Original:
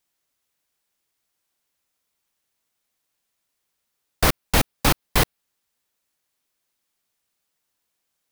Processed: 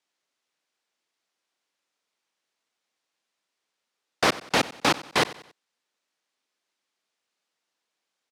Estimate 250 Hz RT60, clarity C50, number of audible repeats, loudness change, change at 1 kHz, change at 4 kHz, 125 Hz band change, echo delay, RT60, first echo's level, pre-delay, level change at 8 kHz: none, none, 3, -2.5 dB, 0.0 dB, -0.5 dB, -12.0 dB, 93 ms, none, -18.0 dB, none, -6.0 dB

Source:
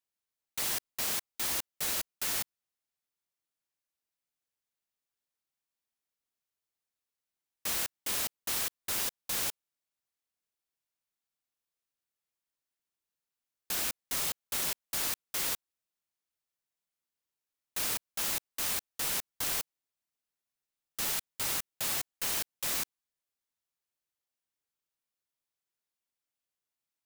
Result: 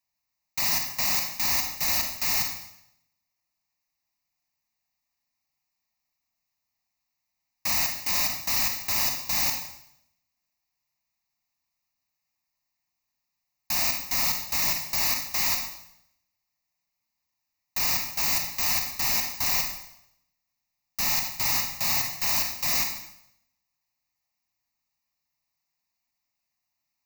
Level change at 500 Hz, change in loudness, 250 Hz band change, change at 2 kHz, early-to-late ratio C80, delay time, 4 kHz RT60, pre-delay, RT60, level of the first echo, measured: +3.0 dB, +8.0 dB, +6.5 dB, +8.5 dB, 8.5 dB, none, 0.75 s, 31 ms, 0.75 s, none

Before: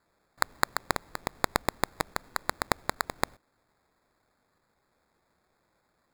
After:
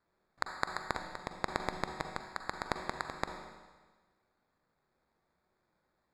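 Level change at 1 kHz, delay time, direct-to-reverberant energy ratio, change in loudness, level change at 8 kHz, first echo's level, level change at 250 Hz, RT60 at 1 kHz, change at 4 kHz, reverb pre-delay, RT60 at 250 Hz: -6.0 dB, none, 5.0 dB, -7.0 dB, -13.5 dB, none, -5.5 dB, 1.4 s, -8.0 dB, 39 ms, 1.4 s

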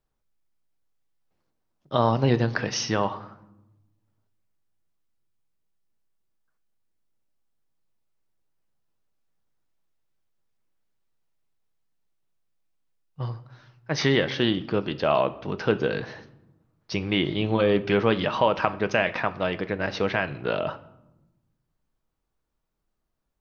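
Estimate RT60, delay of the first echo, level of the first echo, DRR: 0.95 s, none, none, 11.5 dB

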